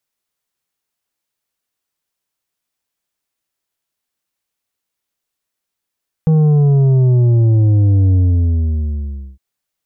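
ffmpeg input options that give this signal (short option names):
-f lavfi -i "aevalsrc='0.355*clip((3.11-t)/1.25,0,1)*tanh(2.24*sin(2*PI*160*3.11/log(65/160)*(exp(log(65/160)*t/3.11)-1)))/tanh(2.24)':d=3.11:s=44100"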